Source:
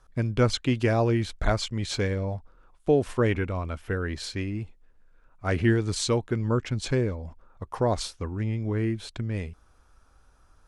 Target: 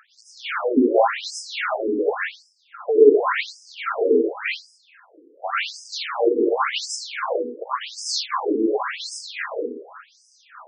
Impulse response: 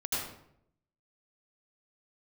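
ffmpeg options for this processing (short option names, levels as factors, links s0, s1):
-filter_complex "[0:a]asplit=2[s0][s1];[s1]highpass=f=720:p=1,volume=35.5,asoftclip=type=tanh:threshold=0.299[s2];[s0][s2]amix=inputs=2:normalize=0,lowpass=f=2100:p=1,volume=0.501[s3];[1:a]atrim=start_sample=2205[s4];[s3][s4]afir=irnorm=-1:irlink=0,afftfilt=real='re*between(b*sr/1024,340*pow(7000/340,0.5+0.5*sin(2*PI*0.9*pts/sr))/1.41,340*pow(7000/340,0.5+0.5*sin(2*PI*0.9*pts/sr))*1.41)':imag='im*between(b*sr/1024,340*pow(7000/340,0.5+0.5*sin(2*PI*0.9*pts/sr))/1.41,340*pow(7000/340,0.5+0.5*sin(2*PI*0.9*pts/sr))*1.41)':win_size=1024:overlap=0.75"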